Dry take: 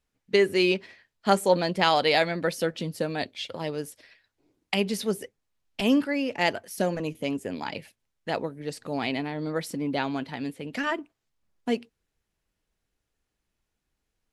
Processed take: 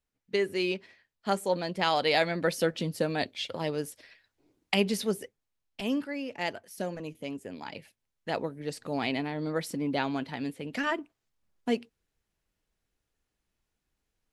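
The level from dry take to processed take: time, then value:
0:01.60 −7 dB
0:02.56 0 dB
0:04.87 0 dB
0:05.80 −8 dB
0:07.58 −8 dB
0:08.49 −1.5 dB

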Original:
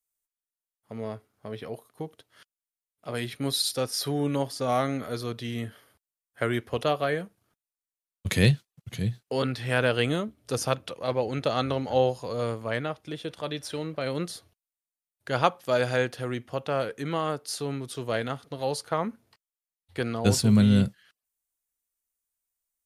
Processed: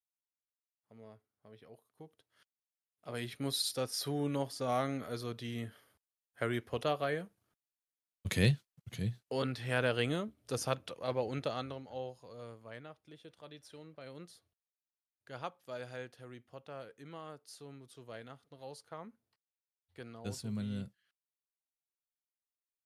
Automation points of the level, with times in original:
0:01.66 −19.5 dB
0:03.29 −7.5 dB
0:11.38 −7.5 dB
0:11.88 −19 dB

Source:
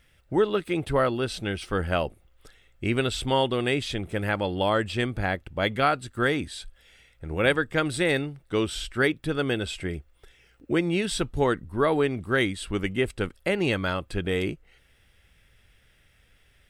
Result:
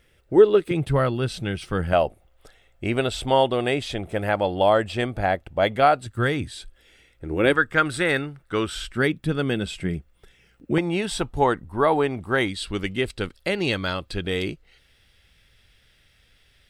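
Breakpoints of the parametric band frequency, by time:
parametric band +9.5 dB 0.8 octaves
410 Hz
from 0:00.71 140 Hz
from 0:01.93 680 Hz
from 0:06.06 110 Hz
from 0:06.56 330 Hz
from 0:07.53 1,400 Hz
from 0:08.89 180 Hz
from 0:10.78 840 Hz
from 0:12.48 4,300 Hz

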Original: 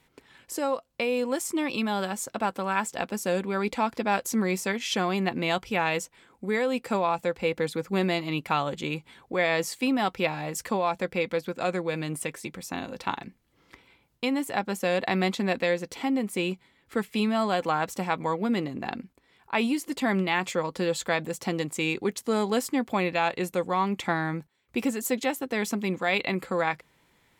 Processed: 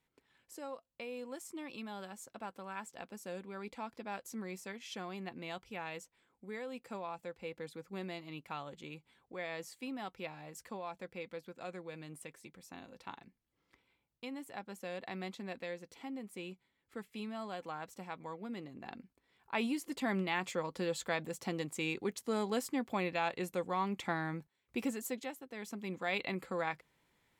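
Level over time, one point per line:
0:18.57 −17 dB
0:19.55 −9 dB
0:24.94 −9 dB
0:25.47 −19 dB
0:26.06 −10 dB

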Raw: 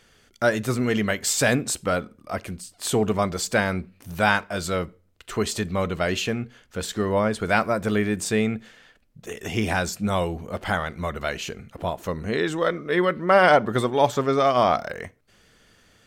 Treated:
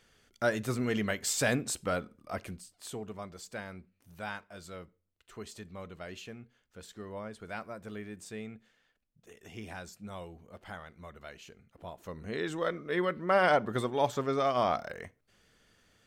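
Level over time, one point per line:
0:02.49 −8 dB
0:03.01 −19.5 dB
0:11.67 −19.5 dB
0:12.52 −9 dB

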